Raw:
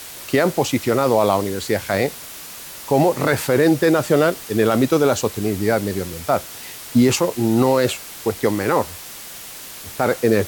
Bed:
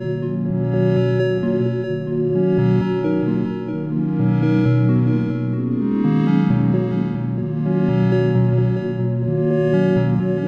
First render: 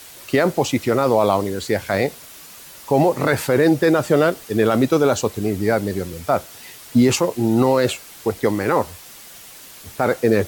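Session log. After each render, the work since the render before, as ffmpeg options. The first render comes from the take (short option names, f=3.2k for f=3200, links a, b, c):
-af "afftdn=nr=6:nf=-36"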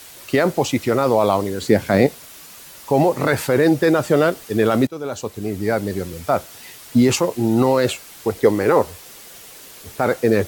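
-filter_complex "[0:a]asettb=1/sr,asplit=3[a][b][c];[a]atrim=end=1.614[d];[b]atrim=start=1.61:end=2.07,asetpts=PTS-STARTPTS,afade=t=in:d=0.004:c=qsin,afade=t=out:st=0.456:d=0.004:c=qsin,equalizer=f=220:w=0.62:g=9.5[e];[c]atrim=start=2.066[f];[d][e]acrossfade=d=0.004:c1=hsin:c2=qsin[g];[g][f]acrossfade=d=0.004:c1=qsin:c2=hsin,asettb=1/sr,asplit=3[h][i][j];[h]atrim=end=8.354[k];[i]atrim=start=8.35:end=9.99,asetpts=PTS-STARTPTS,afade=t=in:d=0.004:c=qsin,afade=t=out:st=1.636:d=0.004:c=qsin,equalizer=f=440:w=2.3:g=6.5[l];[j]atrim=start=9.986[m];[k][l]acrossfade=d=0.004:c1=hsin:c2=qsin[n];[n][m]acrossfade=d=0.004:c1=qsin:c2=hsin,asplit=2[o][p];[o]atrim=end=4.87,asetpts=PTS-STARTPTS,afade=t=out:st=4.866:d=0.004:c=hsin:silence=0.1[q];[p]atrim=start=4.87,asetpts=PTS-STARTPTS,afade=t=in:d=1.39:c=qsin:silence=0.1[r];[q][r]concat=n=2:v=0:a=1"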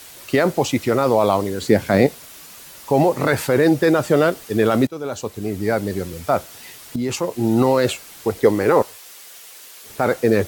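-filter_complex "[0:a]asettb=1/sr,asplit=3[a][b][c];[a]atrim=end=8.824[d];[b]atrim=start=8.82:end=9.9,asetpts=PTS-STARTPTS,afade=t=in:d=0.004:c=qsin,afade=t=out:st=1.076:d=0.004:c=qsin,highpass=f=1k:p=1[e];[c]atrim=start=9.896[f];[d][e]acrossfade=d=0.004:c1=hsin:c2=qsin[g];[g][f]acrossfade=d=0.004:c1=qsin:c2=hsin,asplit=2[h][i];[h]atrim=end=6.96,asetpts=PTS-STARTPTS,afade=t=out:st=6.956:d=0.004:c=hsin:silence=0.237137[j];[i]atrim=start=6.96,asetpts=PTS-STARTPTS,afade=t=in:d=0.52:silence=0.237137[k];[j][k]concat=n=2:v=0:a=1"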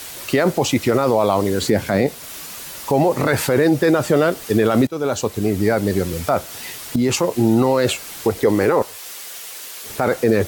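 -filter_complex "[0:a]asplit=2[a][b];[b]acompressor=threshold=-23dB:ratio=6,volume=2.5dB[c];[a][c]amix=inputs=2:normalize=0,alimiter=limit=-6.5dB:level=0:latency=1:release=25"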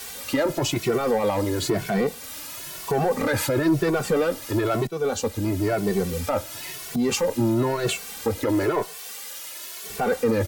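-filter_complex "[0:a]asoftclip=type=tanh:threshold=-12dB,asplit=2[a][b];[b]adelay=2.2,afreqshift=1[c];[a][c]amix=inputs=2:normalize=1"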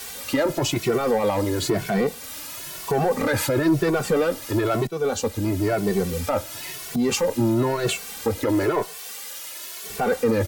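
-af "volume=1dB"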